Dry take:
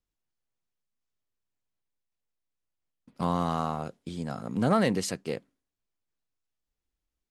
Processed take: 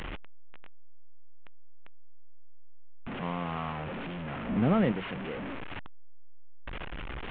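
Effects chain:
linear delta modulator 16 kbit/s, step −24 dBFS
0:04.49–0:04.92: low-shelf EQ 480 Hz +9 dB
level −7 dB

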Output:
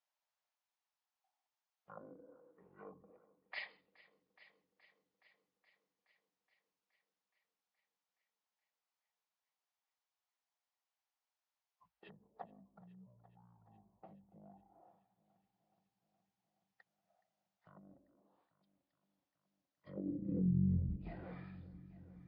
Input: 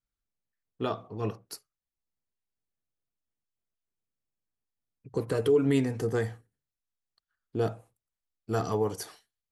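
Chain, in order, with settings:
treble cut that deepens with the level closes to 360 Hz, closed at −25 dBFS
brickwall limiter −26 dBFS, peak gain reduction 8.5 dB
high-pass filter sweep 1,900 Hz → 64 Hz, 0:08.36–0:09.14
echo machine with several playback heads 180 ms, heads first and second, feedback 60%, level −22 dB
wrong playback speed 78 rpm record played at 33 rpm
level −1.5 dB

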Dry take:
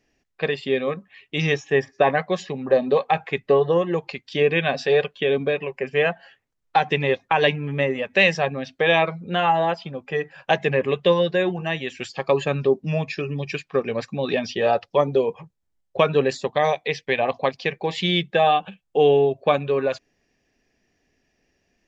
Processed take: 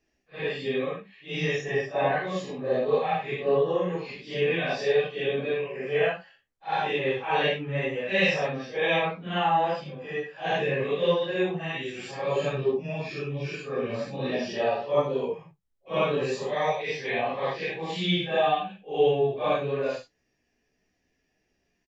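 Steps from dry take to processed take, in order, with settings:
random phases in long frames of 200 ms
double-tracking delay 16 ms −11 dB
level −5.5 dB

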